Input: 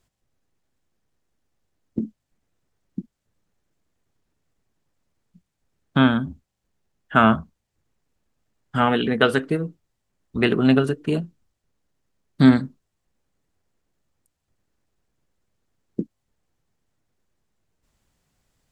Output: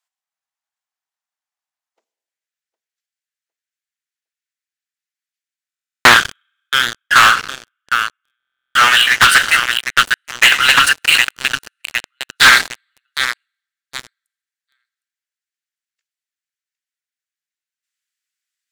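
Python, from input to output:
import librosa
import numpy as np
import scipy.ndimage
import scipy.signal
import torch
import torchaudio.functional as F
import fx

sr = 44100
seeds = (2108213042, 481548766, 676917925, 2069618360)

y = fx.steep_highpass(x, sr, hz=fx.steps((0.0, 760.0), (2.04, 1500.0)), slope=36)
y = fx.echo_feedback(y, sr, ms=759, feedback_pct=39, wet_db=-15.5)
y = fx.rev_schroeder(y, sr, rt60_s=1.2, comb_ms=33, drr_db=16.5)
y = fx.leveller(y, sr, passes=5)
y = fx.rider(y, sr, range_db=4, speed_s=0.5)
y = fx.leveller(y, sr, passes=2)
y = fx.buffer_glitch(y, sr, at_s=(5.68, 8.38), block=1024, repeats=15)
y = fx.doppler_dist(y, sr, depth_ms=0.37)
y = y * librosa.db_to_amplitude(3.0)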